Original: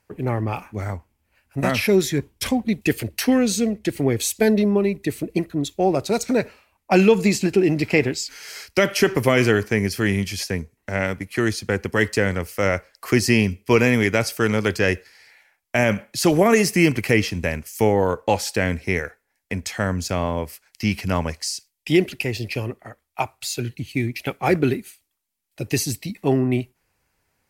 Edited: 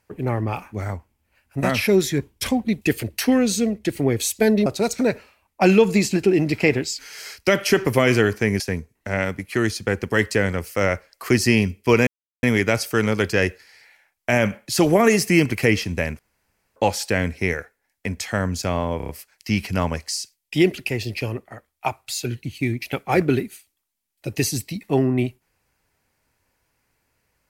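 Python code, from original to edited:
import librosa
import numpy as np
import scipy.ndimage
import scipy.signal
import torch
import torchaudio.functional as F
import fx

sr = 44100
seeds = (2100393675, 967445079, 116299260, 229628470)

y = fx.edit(x, sr, fx.cut(start_s=4.66, length_s=1.3),
    fx.cut(start_s=9.9, length_s=0.52),
    fx.insert_silence(at_s=13.89, length_s=0.36),
    fx.room_tone_fill(start_s=17.65, length_s=0.57),
    fx.stutter(start_s=20.43, slice_s=0.03, count=5), tone=tone)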